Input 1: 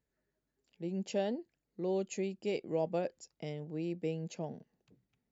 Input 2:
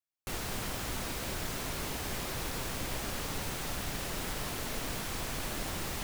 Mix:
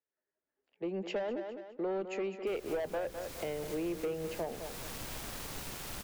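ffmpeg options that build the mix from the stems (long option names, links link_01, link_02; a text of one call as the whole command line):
ffmpeg -i stem1.wav -i stem2.wav -filter_complex "[0:a]acrossover=split=340 2800:gain=0.112 1 0.0708[link_01][link_02][link_03];[link_01][link_02][link_03]amix=inputs=3:normalize=0,dynaudnorm=framelen=110:gausssize=9:maxgain=10dB,asoftclip=type=tanh:threshold=-25dB,volume=1dB,asplit=3[link_04][link_05][link_06];[link_05]volume=-11.5dB[link_07];[1:a]acrusher=bits=5:mix=0:aa=0.000001,adelay=2200,volume=-7.5dB,asplit=2[link_08][link_09];[link_09]volume=-12dB[link_10];[link_06]apad=whole_len=363247[link_11];[link_08][link_11]sidechaincompress=threshold=-39dB:ratio=5:attack=48:release=561[link_12];[link_07][link_10]amix=inputs=2:normalize=0,aecho=0:1:206|412|618|824|1030:1|0.36|0.13|0.0467|0.0168[link_13];[link_04][link_12][link_13]amix=inputs=3:normalize=0,agate=range=-8dB:threshold=-51dB:ratio=16:detection=peak,acrossover=split=190[link_14][link_15];[link_15]acompressor=threshold=-33dB:ratio=4[link_16];[link_14][link_16]amix=inputs=2:normalize=0" out.wav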